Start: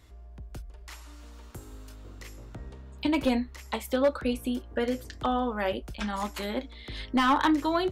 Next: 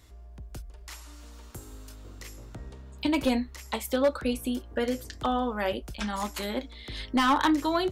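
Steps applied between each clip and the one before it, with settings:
bass and treble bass 0 dB, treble +5 dB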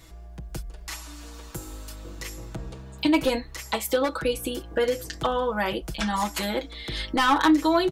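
comb filter 6.1 ms, depth 72%
in parallel at 0 dB: downward compressor, threshold −33 dBFS, peak gain reduction 15.5 dB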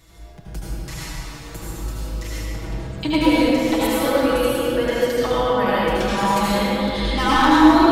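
convolution reverb RT60 3.4 s, pre-delay 70 ms, DRR −8.5 dB
level −2.5 dB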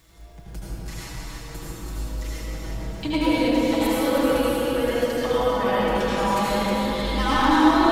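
surface crackle 510 per second −45 dBFS
on a send: delay that swaps between a low-pass and a high-pass 157 ms, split 1,200 Hz, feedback 70%, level −2.5 dB
on the sum: level −5 dB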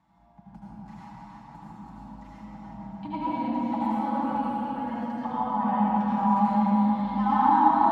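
pair of resonant band-passes 430 Hz, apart 2 octaves
level +6 dB

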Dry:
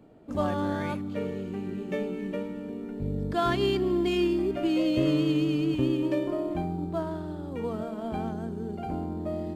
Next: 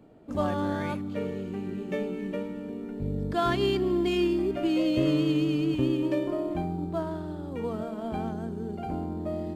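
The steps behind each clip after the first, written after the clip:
no processing that can be heard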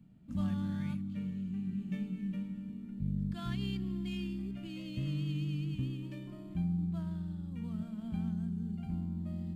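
drawn EQ curve 110 Hz 0 dB, 190 Hz +6 dB, 320 Hz −16 dB, 460 Hz −24 dB, 2,800 Hz −6 dB, 5,500 Hz −8 dB, 8,700 Hz −6 dB
speech leveller 2 s
level −5 dB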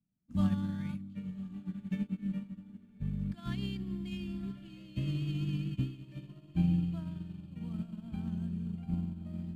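feedback delay with all-pass diffusion 1,138 ms, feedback 55%, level −10.5 dB
expander for the loud parts 2.5 to 1, over −51 dBFS
level +6.5 dB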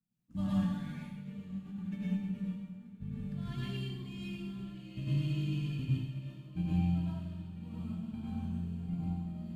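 flanger 0.21 Hz, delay 5.4 ms, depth 5.5 ms, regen −49%
dense smooth reverb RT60 0.89 s, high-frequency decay 1×, pre-delay 85 ms, DRR −7 dB
level −2.5 dB

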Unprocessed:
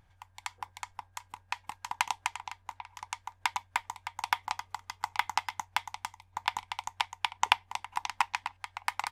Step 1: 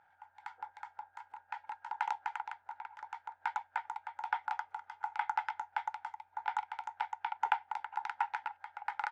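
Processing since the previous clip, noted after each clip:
transient designer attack −12 dB, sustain +1 dB
pair of resonant band-passes 1,100 Hz, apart 0.72 octaves
level +11.5 dB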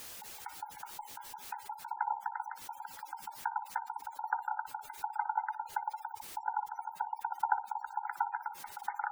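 delay with a band-pass on its return 60 ms, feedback 34%, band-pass 690 Hz, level −9.5 dB
bit-depth reduction 8 bits, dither triangular
gate on every frequency bin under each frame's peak −15 dB strong
level +1 dB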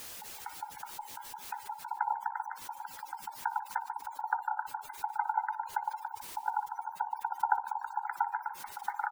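echo with shifted repeats 148 ms, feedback 44%, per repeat +52 Hz, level −16 dB
level +2 dB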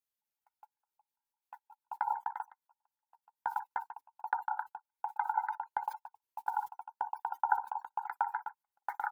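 noise gate −35 dBFS, range −49 dB
parametric band 13,000 Hz +9 dB 0.28 octaves
level −1 dB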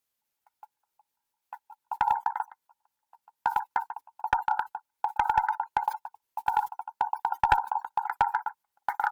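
asymmetric clip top −24 dBFS
level +8.5 dB

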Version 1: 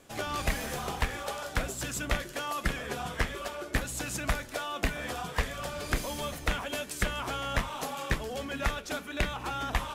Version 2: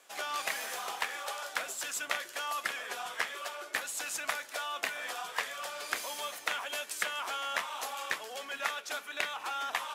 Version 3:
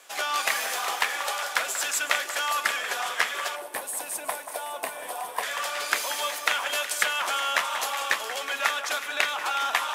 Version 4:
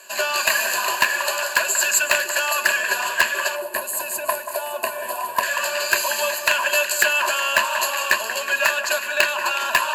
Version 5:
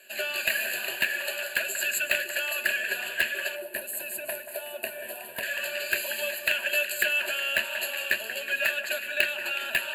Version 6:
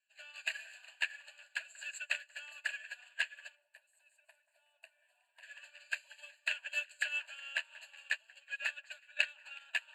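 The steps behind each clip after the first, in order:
high-pass filter 770 Hz 12 dB per octave
low-shelf EQ 380 Hz −7 dB; delay that swaps between a low-pass and a high-pass 184 ms, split 1,800 Hz, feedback 81%, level −10 dB; gain on a spectral selection 0:03.56–0:05.43, 1,100–8,000 Hz −12 dB; level +9 dB
EQ curve with evenly spaced ripples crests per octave 1.4, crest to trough 17 dB; in parallel at −8 dB: wrap-around overflow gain 9.5 dB; on the sum: level +1 dB
phaser with its sweep stopped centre 2,500 Hz, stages 4; level −4.5 dB
elliptic band-pass filter 790–8,000 Hz, stop band 50 dB; expander for the loud parts 2.5 to 1, over −39 dBFS; level −4.5 dB

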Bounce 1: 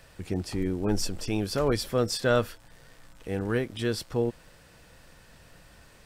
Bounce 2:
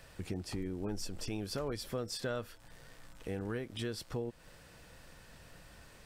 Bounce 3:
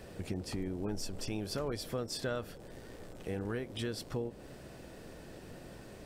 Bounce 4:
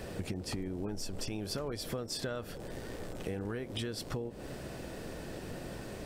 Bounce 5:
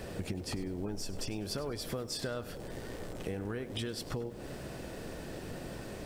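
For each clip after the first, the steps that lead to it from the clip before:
downward compressor 4 to 1, threshold −34 dBFS, peak gain reduction 13 dB; level −2 dB
noise in a band 42–590 Hz −52 dBFS; every ending faded ahead of time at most 280 dB per second; level +1 dB
downward compressor, threshold −41 dBFS, peak gain reduction 9.5 dB; level +7 dB
feedback echo at a low word length 99 ms, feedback 35%, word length 9 bits, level −15 dB

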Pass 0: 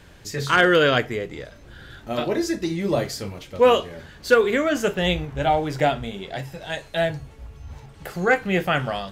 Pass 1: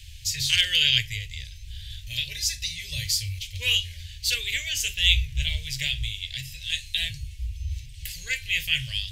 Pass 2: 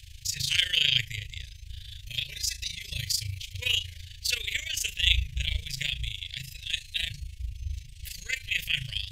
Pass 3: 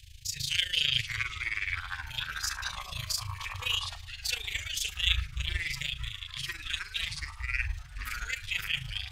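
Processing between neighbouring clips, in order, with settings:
inverse Chebyshev band-stop filter 180–1,400 Hz, stop band 40 dB; level +8.5 dB
amplitude modulation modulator 27 Hz, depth 65%
floating-point word with a short mantissa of 6 bits; delay with pitch and tempo change per echo 371 ms, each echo −6 semitones, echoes 3, each echo −6 dB; level −4 dB

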